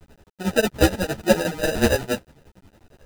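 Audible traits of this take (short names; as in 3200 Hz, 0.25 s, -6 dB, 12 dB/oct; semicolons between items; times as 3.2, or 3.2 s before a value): aliases and images of a low sample rate 1100 Hz, jitter 0%; tremolo triangle 11 Hz, depth 90%; a quantiser's noise floor 10-bit, dither none; a shimmering, thickened sound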